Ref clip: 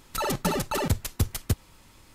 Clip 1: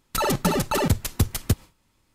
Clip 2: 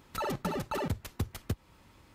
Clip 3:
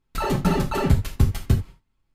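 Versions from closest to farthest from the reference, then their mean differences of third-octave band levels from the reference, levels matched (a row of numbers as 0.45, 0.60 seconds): 2, 1, 3; 3.5, 4.5, 8.0 decibels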